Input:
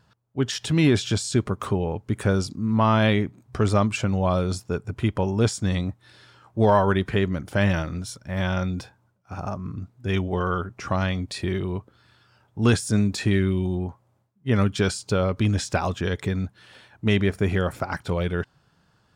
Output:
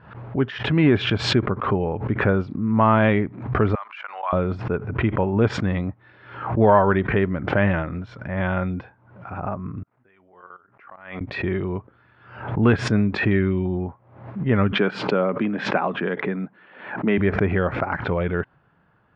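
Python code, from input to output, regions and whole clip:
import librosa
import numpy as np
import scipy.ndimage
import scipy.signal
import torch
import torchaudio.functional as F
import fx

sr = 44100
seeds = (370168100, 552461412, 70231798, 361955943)

y = fx.chain(x, sr, fx.highpass(hz=930.0, slope=24),
    fx.level_steps(step_db=18), at=(3.75, 4.33))
y = fx.chain(y, sr, fx.lowpass(hz=1500.0, slope=12),
    fx.differentiator(),
    fx.level_steps(step_db=15), at=(9.83, 11.21))
y = fx.chain(y, sr, fx.steep_highpass(hz=160.0, slope=36),
    fx.peak_eq(hz=7100.0, db=-7.5, octaves=1.6), at=(14.72, 17.18))
y = scipy.signal.sosfilt(scipy.signal.butter(4, 2300.0, 'lowpass', fs=sr, output='sos'), y)
y = fx.low_shelf(y, sr, hz=140.0, db=-6.0)
y = fx.pre_swell(y, sr, db_per_s=86.0)
y = F.gain(torch.from_numpy(y), 3.5).numpy()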